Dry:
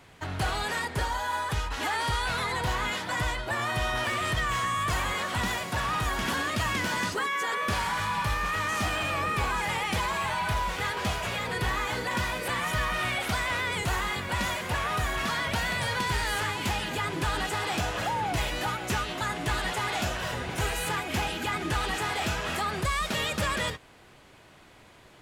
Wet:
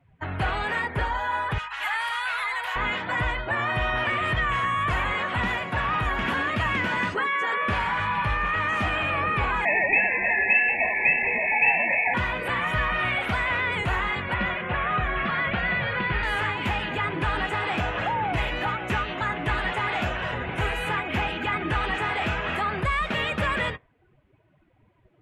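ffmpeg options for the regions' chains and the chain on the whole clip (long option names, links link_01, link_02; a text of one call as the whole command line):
ffmpeg -i in.wav -filter_complex "[0:a]asettb=1/sr,asplit=3[link_01][link_02][link_03];[link_01]atrim=end=1.584[link_04];[link_02]atrim=start=1.58:end=2.76,asetpts=PTS-STARTPTS,afade=type=in:duration=0.004:curve=qsin,afade=type=out:start_time=1.176:duration=0.004:curve=qsin,highpass=1000,highshelf=frequency=9400:gain=11,aeval=exprs='val(0)+0.00112*(sin(2*PI*50*n/s)+sin(2*PI*2*50*n/s)/2+sin(2*PI*3*50*n/s)/3+sin(2*PI*4*50*n/s)/4+sin(2*PI*5*50*n/s)/5)':channel_layout=same[link_05];[link_03]atrim=start=2.756[link_06];[link_04][link_05]acrossfade=duration=0.004:curve1=hsin:curve2=qsin[link_07];[link_07][link_06]acrossfade=duration=0.004:curve1=qsin:curve2=hsin,asettb=1/sr,asplit=3[link_08][link_09][link_10];[link_08]atrim=end=9.654[link_11];[link_09]atrim=start=9.65:end=12.14,asetpts=PTS-STARTPTS,afade=type=in:duration=0.004:curve=qsin,afade=type=out:start_time=2.486:duration=0.004:curve=qsin,acontrast=28,lowpass=frequency=2300:width_type=q:width=0.5098,lowpass=frequency=2300:width_type=q:width=0.6013,lowpass=frequency=2300:width_type=q:width=0.9,lowpass=frequency=2300:width_type=q:width=2.563,afreqshift=-2700,asuperstop=centerf=1300:order=12:qfactor=1.7[link_12];[link_10]atrim=start=12.136[link_13];[link_11][link_12]acrossfade=duration=0.004:curve1=hsin:curve2=qsin[link_14];[link_14][link_13]acrossfade=duration=0.004:curve1=qsin:curve2=hsin,asettb=1/sr,asplit=3[link_15][link_16][link_17];[link_15]atrim=end=14.344[link_18];[link_16]atrim=start=14.34:end=16.23,asetpts=PTS-STARTPTS,afade=type=in:duration=0.004:curve=qsin,afade=type=out:start_time=1.886:duration=0.004:curve=qsin,lowpass=3500,bandreject=frequency=930:width=12,aecho=1:1:5.6:0.33,atrim=end_sample=83349[link_19];[link_17]atrim=start=16.226[link_20];[link_18][link_19]acrossfade=duration=0.004:curve1=hsin:curve2=qsin[link_21];[link_21][link_20]acrossfade=duration=0.004:curve1=qsin:curve2=hsin,afftdn=noise_reduction=22:noise_floor=-45,highshelf=frequency=3600:width_type=q:width=1.5:gain=-12,volume=2.5dB" out.wav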